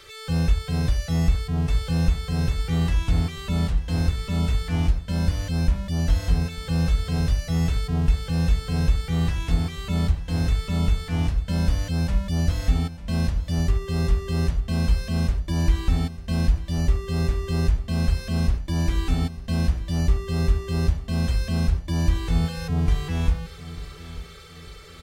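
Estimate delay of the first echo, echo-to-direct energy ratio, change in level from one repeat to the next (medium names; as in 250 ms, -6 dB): 896 ms, -14.5 dB, -8.0 dB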